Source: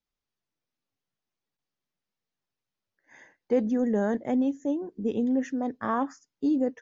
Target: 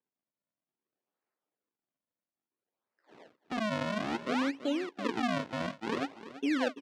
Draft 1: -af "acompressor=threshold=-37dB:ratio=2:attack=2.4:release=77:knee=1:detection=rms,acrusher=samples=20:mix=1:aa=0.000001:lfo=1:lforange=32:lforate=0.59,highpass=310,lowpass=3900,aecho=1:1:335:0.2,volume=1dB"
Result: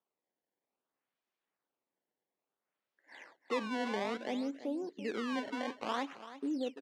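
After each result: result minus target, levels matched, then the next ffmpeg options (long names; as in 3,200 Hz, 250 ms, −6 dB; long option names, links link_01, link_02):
sample-and-hold swept by an LFO: distortion −13 dB; downward compressor: peak gain reduction +5.5 dB
-af "acompressor=threshold=-37dB:ratio=2:attack=2.4:release=77:knee=1:detection=rms,acrusher=samples=62:mix=1:aa=0.000001:lfo=1:lforange=99.2:lforate=0.59,highpass=310,lowpass=3900,aecho=1:1:335:0.2,volume=1dB"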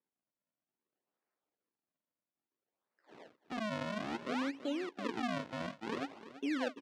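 downward compressor: peak gain reduction +5.5 dB
-af "acompressor=threshold=-26dB:ratio=2:attack=2.4:release=77:knee=1:detection=rms,acrusher=samples=62:mix=1:aa=0.000001:lfo=1:lforange=99.2:lforate=0.59,highpass=310,lowpass=3900,aecho=1:1:335:0.2,volume=1dB"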